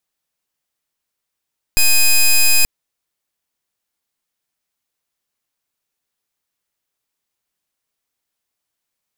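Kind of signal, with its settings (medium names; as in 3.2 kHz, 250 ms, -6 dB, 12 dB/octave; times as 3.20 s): pulse 2.5 kHz, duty 10% -10.5 dBFS 0.88 s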